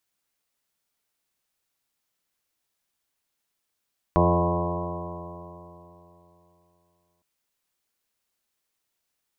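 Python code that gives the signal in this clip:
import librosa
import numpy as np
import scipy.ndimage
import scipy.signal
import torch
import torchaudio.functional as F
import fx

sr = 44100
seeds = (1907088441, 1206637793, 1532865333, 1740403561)

y = fx.additive_stiff(sr, length_s=3.06, hz=85.7, level_db=-22.5, upper_db=(1.0, -13.5, -1.0, -5, -7.0, 0.0, -5.5, -8, -12, -1.5, -5.5), decay_s=3.21, stiffness=0.00084)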